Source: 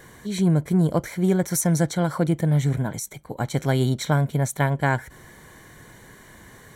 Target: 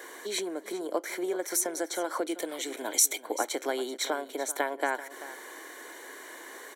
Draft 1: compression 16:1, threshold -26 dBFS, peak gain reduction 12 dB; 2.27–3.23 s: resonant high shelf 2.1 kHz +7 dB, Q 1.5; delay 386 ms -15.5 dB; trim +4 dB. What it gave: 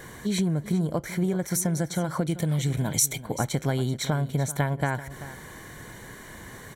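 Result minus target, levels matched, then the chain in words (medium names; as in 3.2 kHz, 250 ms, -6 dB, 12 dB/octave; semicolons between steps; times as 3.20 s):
250 Hz band +6.0 dB
compression 16:1, threshold -26 dBFS, peak gain reduction 12 dB; steep high-pass 300 Hz 48 dB/octave; 2.27–3.23 s: resonant high shelf 2.1 kHz +7 dB, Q 1.5; delay 386 ms -15.5 dB; trim +4 dB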